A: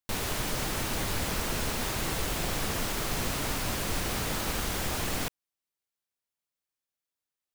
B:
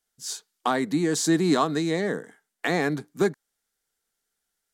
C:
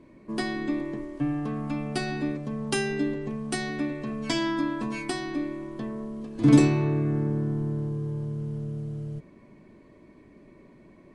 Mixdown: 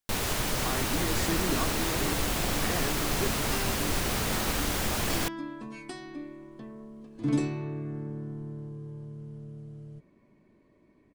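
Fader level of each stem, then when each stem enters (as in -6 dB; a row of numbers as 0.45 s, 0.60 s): +2.0 dB, -11.5 dB, -10.0 dB; 0.00 s, 0.00 s, 0.80 s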